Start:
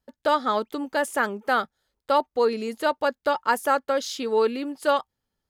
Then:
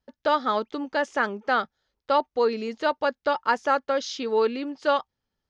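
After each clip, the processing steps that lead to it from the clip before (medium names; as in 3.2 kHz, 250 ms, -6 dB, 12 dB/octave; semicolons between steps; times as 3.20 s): Chebyshev low-pass 6.1 kHz, order 4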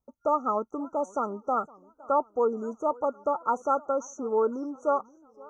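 FFT band-reject 1.4–5.8 kHz; modulated delay 519 ms, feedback 46%, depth 197 cents, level -23.5 dB; trim -2.5 dB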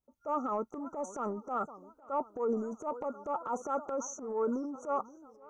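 transient shaper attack -9 dB, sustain +8 dB; trim -5.5 dB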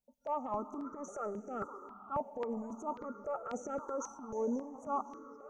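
reverberation RT60 4.9 s, pre-delay 88 ms, DRR 13.5 dB; stepped phaser 3.7 Hz 350–3800 Hz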